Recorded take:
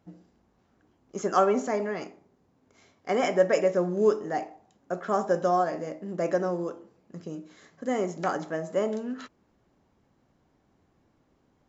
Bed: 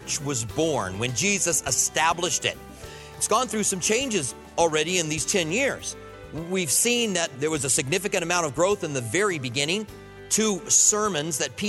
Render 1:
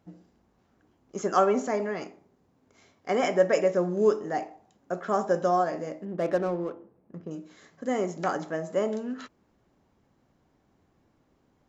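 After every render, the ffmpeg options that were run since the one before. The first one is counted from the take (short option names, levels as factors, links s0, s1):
-filter_complex "[0:a]asettb=1/sr,asplit=3[s0][s1][s2];[s0]atrim=end=6.054[s3];[s1]atrim=start=6.05:end=7.31,asetpts=PTS-STARTPTS,afade=t=in:d=0.004:c=qsin,afade=t=out:st=1.256:d=0.004:c=qsin,adynamicsmooth=sensitivity=8:basefreq=1300[s4];[s2]atrim=start=7.306[s5];[s3][s4]acrossfade=d=0.004:c1=hsin:c2=qsin[s6];[s6][s5]acrossfade=d=0.004:c1=qsin:c2=hsin"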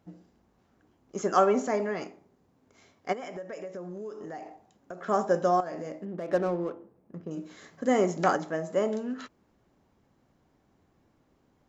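-filter_complex "[0:a]asplit=3[s0][s1][s2];[s0]afade=t=out:st=3.12:d=0.02[s3];[s1]acompressor=threshold=0.0158:ratio=8:attack=3.2:release=140:knee=1:detection=peak,afade=t=in:st=3.12:d=0.02,afade=t=out:st=5.07:d=0.02[s4];[s2]afade=t=in:st=5.07:d=0.02[s5];[s3][s4][s5]amix=inputs=3:normalize=0,asettb=1/sr,asplit=3[s6][s7][s8];[s6]atrim=end=5.604[s9];[s7]atrim=start=5.6:end=6.33,asetpts=PTS-STARTPTS,afade=t=in:d=0.004:c=qsin,afade=t=out:st=0.726:d=0.004:c=qsin,acompressor=threshold=0.0251:ratio=6:attack=3.2:release=140:knee=1:detection=peak[s10];[s8]atrim=start=6.326[s11];[s9][s10]acrossfade=d=0.004:c1=hsin:c2=qsin[s12];[s12][s11]acrossfade=d=0.004:c1=qsin:c2=hsin,asplit=3[s13][s14][s15];[s13]atrim=end=7.372[s16];[s14]atrim=start=7.368:end=8.362,asetpts=PTS-STARTPTS,volume=1.58[s17];[s15]atrim=start=8.358[s18];[s16][s17]acrossfade=d=0.004:c1=hsin:c2=hsin[s19];[s19][s18]acrossfade=d=0.004:c1=hsin:c2=hsin"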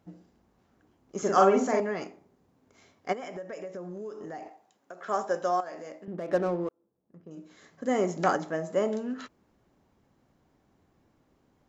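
-filter_complex "[0:a]asettb=1/sr,asplit=3[s0][s1][s2];[s0]atrim=end=1.184[s3];[s1]atrim=start=1.18:end=1.8,asetpts=PTS-STARTPTS,afade=t=in:d=0.004:c=qsin,afade=t=out:st=0.616:d=0.004:c=qsin,asplit=2[s4][s5];[s5]adelay=46,volume=0.794[s6];[s4][s6]amix=inputs=2:normalize=0,atrim=end_sample=27342[s7];[s2]atrim=start=1.796[s8];[s3][s7]acrossfade=d=0.004:c1=hsin:c2=qsin[s9];[s9][s8]acrossfade=d=0.004:c1=qsin:c2=hsin,asettb=1/sr,asplit=3[s10][s11][s12];[s10]atrim=end=4.484[s13];[s11]atrim=start=4.48:end=6.08,asetpts=PTS-STARTPTS,afade=t=in:d=0.004:c=qsin,afade=t=out:st=1.596:d=0.004:c=qsin,highpass=f=650:p=1[s14];[s12]atrim=start=6.076[s15];[s13][s14]acrossfade=d=0.004:c1=hsin:c2=qsin[s16];[s16][s15]acrossfade=d=0.004:c1=qsin:c2=hsin,asplit=2[s17][s18];[s17]atrim=end=6.69,asetpts=PTS-STARTPTS,afade=t=out:st=6.686:d=0.004:c=hsin[s19];[s18]atrim=start=6.69,asetpts=PTS-STARTPTS,afade=t=in:d=1.71[s20];[s19][s20]concat=n=2:v=0:a=1"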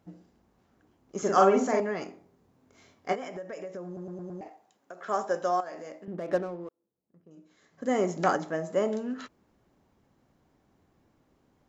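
-filter_complex "[0:a]asettb=1/sr,asplit=3[s0][s1][s2];[s0]atrim=end=2.064[s3];[s1]atrim=start=2.06:end=3.29,asetpts=PTS-STARTPTS,afade=t=in:d=0.004:c=qsin,afade=t=out:st=1.226:d=0.004:c=qsin,asplit=2[s4][s5];[s5]adelay=23,volume=0.501[s6];[s4][s6]amix=inputs=2:normalize=0,atrim=end_sample=54243[s7];[s2]atrim=start=3.286[s8];[s3][s7]acrossfade=d=0.004:c1=hsin:c2=qsin[s9];[s9][s8]acrossfade=d=0.004:c1=qsin:c2=hsin,asplit=8[s10][s11][s12][s13][s14][s15][s16][s17];[s10]atrim=end=3.972[s18];[s11]atrim=start=3.858:end=3.972[s19];[s12]atrim=start=3.858:end=3.972[s20];[s13]atrim=start=3.858:end=3.972[s21];[s14]atrim=start=3.858:end=3.972[s22];[s15]atrim=start=4.408:end=6.47,asetpts=PTS-STARTPTS,afade=t=out:st=1.922:d=0.14:silence=0.375837[s23];[s16]atrim=start=6.47:end=7.69,asetpts=PTS-STARTPTS,volume=0.376[s24];[s17]atrim=start=7.69,asetpts=PTS-STARTPTS,afade=t=in:d=0.14:silence=0.375837[s25];[s18][s19]acrossfade=d=0.004:c1=hsin:c2=hsin[s26];[s26][s20]acrossfade=d=0.004:c1=hsin:c2=hsin[s27];[s27][s21]acrossfade=d=0.004:c1=hsin:c2=hsin[s28];[s28][s22]acrossfade=d=0.004:c1=hsin:c2=hsin[s29];[s23][s24][s25]concat=n=3:v=0:a=1[s30];[s29][s30]acrossfade=d=0.004:c1=hsin:c2=hsin"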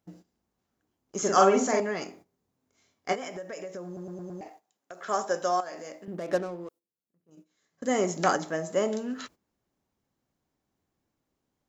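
-af "agate=range=0.2:threshold=0.00251:ratio=16:detection=peak,highshelf=f=3400:g=11"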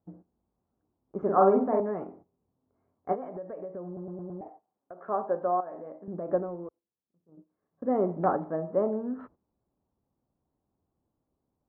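-af "lowpass=f=1100:w=0.5412,lowpass=f=1100:w=1.3066,equalizer=f=68:w=1.1:g=4"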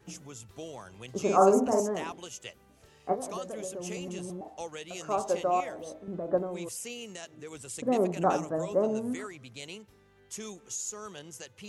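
-filter_complex "[1:a]volume=0.119[s0];[0:a][s0]amix=inputs=2:normalize=0"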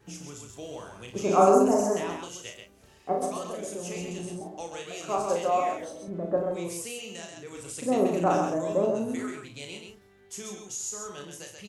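-filter_complex "[0:a]asplit=2[s0][s1];[s1]adelay=35,volume=0.531[s2];[s0][s2]amix=inputs=2:normalize=0,aecho=1:1:58|132:0.335|0.562"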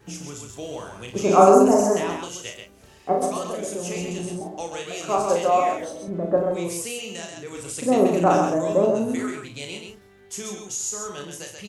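-af "volume=2,alimiter=limit=0.794:level=0:latency=1"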